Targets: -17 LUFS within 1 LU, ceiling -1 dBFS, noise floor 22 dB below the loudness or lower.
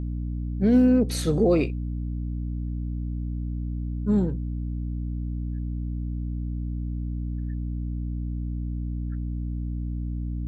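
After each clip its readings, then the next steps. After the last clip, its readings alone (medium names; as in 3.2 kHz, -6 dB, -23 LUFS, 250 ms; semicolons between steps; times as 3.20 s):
hum 60 Hz; highest harmonic 300 Hz; hum level -27 dBFS; loudness -28.0 LUFS; peak level -10.0 dBFS; loudness target -17.0 LUFS
-> de-hum 60 Hz, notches 5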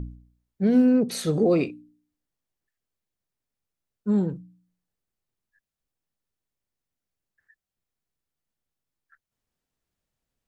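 hum not found; loudness -23.0 LUFS; peak level -11.0 dBFS; loudness target -17.0 LUFS
-> trim +6 dB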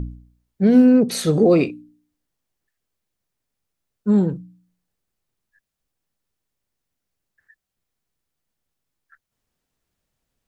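loudness -17.0 LUFS; peak level -5.0 dBFS; noise floor -81 dBFS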